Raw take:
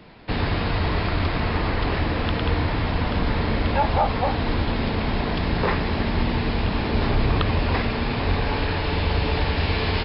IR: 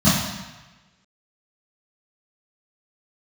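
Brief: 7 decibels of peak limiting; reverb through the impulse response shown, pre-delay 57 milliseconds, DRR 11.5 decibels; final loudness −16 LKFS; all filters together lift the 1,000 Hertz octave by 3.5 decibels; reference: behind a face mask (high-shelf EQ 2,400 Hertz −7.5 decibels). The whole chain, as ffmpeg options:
-filter_complex "[0:a]equalizer=frequency=1000:width_type=o:gain=5.5,alimiter=limit=-13dB:level=0:latency=1,asplit=2[link_01][link_02];[1:a]atrim=start_sample=2205,adelay=57[link_03];[link_02][link_03]afir=irnorm=-1:irlink=0,volume=-32dB[link_04];[link_01][link_04]amix=inputs=2:normalize=0,highshelf=frequency=2400:gain=-7.5,volume=6dB"

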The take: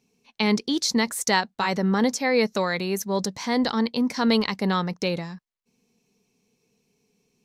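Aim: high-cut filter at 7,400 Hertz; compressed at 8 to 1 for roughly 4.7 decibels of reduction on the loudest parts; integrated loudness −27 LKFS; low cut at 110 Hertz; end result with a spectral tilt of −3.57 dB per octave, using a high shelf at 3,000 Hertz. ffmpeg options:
ffmpeg -i in.wav -af "highpass=110,lowpass=7400,highshelf=frequency=3000:gain=4.5,acompressor=threshold=-21dB:ratio=8,volume=-0.5dB" out.wav

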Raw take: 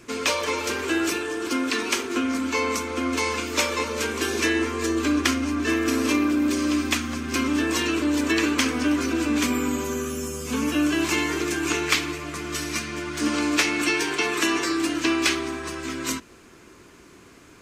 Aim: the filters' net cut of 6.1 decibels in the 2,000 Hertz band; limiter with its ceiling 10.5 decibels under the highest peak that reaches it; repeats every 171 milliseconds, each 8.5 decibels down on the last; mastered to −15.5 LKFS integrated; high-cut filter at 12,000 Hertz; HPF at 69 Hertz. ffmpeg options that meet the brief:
ffmpeg -i in.wav -af "highpass=69,lowpass=12000,equalizer=frequency=2000:width_type=o:gain=-8,alimiter=limit=-18.5dB:level=0:latency=1,aecho=1:1:171|342|513|684:0.376|0.143|0.0543|0.0206,volume=11.5dB" out.wav

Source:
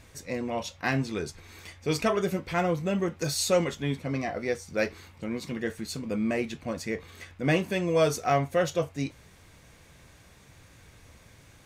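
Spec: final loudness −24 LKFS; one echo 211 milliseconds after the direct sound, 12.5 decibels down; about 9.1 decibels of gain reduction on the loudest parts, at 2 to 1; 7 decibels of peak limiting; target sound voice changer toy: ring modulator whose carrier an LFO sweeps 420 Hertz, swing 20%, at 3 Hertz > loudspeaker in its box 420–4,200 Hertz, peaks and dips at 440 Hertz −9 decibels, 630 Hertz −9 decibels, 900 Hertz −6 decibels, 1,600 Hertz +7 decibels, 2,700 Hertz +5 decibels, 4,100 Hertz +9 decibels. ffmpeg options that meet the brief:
ffmpeg -i in.wav -af "acompressor=threshold=-36dB:ratio=2,alimiter=level_in=3dB:limit=-24dB:level=0:latency=1,volume=-3dB,aecho=1:1:211:0.237,aeval=exprs='val(0)*sin(2*PI*420*n/s+420*0.2/3*sin(2*PI*3*n/s))':channel_layout=same,highpass=420,equalizer=frequency=440:width_type=q:width=4:gain=-9,equalizer=frequency=630:width_type=q:width=4:gain=-9,equalizer=frequency=900:width_type=q:width=4:gain=-6,equalizer=frequency=1600:width_type=q:width=4:gain=7,equalizer=frequency=2700:width_type=q:width=4:gain=5,equalizer=frequency=4100:width_type=q:width=4:gain=9,lowpass=frequency=4200:width=0.5412,lowpass=frequency=4200:width=1.3066,volume=19.5dB" out.wav

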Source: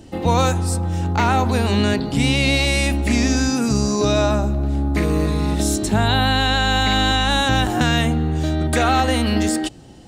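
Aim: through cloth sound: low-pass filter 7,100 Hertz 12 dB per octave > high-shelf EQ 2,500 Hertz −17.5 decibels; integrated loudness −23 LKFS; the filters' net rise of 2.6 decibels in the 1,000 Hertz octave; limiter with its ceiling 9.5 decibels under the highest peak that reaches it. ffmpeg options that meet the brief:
ffmpeg -i in.wav -af "equalizer=frequency=1000:width_type=o:gain=6.5,alimiter=limit=-12dB:level=0:latency=1,lowpass=7100,highshelf=frequency=2500:gain=-17.5" out.wav

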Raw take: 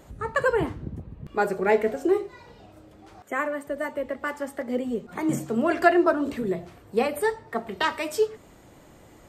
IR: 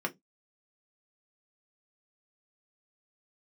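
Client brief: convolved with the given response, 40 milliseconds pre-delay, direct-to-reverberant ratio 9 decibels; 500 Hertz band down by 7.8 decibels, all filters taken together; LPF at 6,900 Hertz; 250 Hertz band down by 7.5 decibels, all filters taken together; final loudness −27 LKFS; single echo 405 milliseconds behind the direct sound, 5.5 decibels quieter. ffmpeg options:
-filter_complex "[0:a]lowpass=6900,equalizer=frequency=250:width_type=o:gain=-6.5,equalizer=frequency=500:width_type=o:gain=-8.5,aecho=1:1:405:0.531,asplit=2[link_01][link_02];[1:a]atrim=start_sample=2205,adelay=40[link_03];[link_02][link_03]afir=irnorm=-1:irlink=0,volume=-14.5dB[link_04];[link_01][link_04]amix=inputs=2:normalize=0,volume=3dB"

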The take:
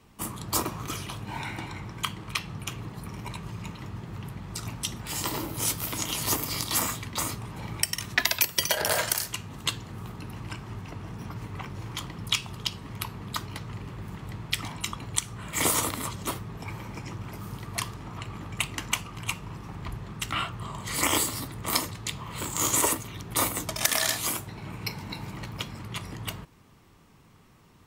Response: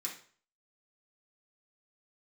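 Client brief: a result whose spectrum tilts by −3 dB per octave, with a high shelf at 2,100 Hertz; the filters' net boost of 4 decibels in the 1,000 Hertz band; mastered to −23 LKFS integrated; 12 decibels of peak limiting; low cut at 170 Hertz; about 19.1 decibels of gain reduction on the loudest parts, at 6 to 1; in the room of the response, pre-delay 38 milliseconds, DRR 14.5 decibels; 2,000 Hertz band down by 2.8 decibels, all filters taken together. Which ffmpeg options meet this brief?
-filter_complex "[0:a]highpass=170,equalizer=frequency=1000:width_type=o:gain=5.5,equalizer=frequency=2000:width_type=o:gain=-8.5,highshelf=frequency=2100:gain=6,acompressor=threshold=-37dB:ratio=6,alimiter=level_in=2.5dB:limit=-24dB:level=0:latency=1,volume=-2.5dB,asplit=2[link_01][link_02];[1:a]atrim=start_sample=2205,adelay=38[link_03];[link_02][link_03]afir=irnorm=-1:irlink=0,volume=-14.5dB[link_04];[link_01][link_04]amix=inputs=2:normalize=0,volume=18.5dB"

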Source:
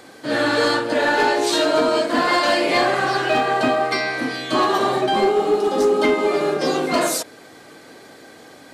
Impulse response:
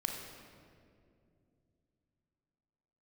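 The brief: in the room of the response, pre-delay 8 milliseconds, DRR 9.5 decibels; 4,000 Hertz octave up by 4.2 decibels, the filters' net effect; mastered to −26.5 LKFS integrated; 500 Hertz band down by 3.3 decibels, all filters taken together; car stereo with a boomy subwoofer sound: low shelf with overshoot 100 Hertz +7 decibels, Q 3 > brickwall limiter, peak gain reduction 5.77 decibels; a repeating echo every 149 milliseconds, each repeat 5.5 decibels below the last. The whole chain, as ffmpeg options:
-filter_complex "[0:a]equalizer=frequency=500:width_type=o:gain=-4,equalizer=frequency=4000:width_type=o:gain=5,aecho=1:1:149|298|447|596|745|894|1043:0.531|0.281|0.149|0.079|0.0419|0.0222|0.0118,asplit=2[link_01][link_02];[1:a]atrim=start_sample=2205,adelay=8[link_03];[link_02][link_03]afir=irnorm=-1:irlink=0,volume=-11.5dB[link_04];[link_01][link_04]amix=inputs=2:normalize=0,lowshelf=frequency=100:width_type=q:width=3:gain=7,volume=-7dB,alimiter=limit=-18dB:level=0:latency=1"

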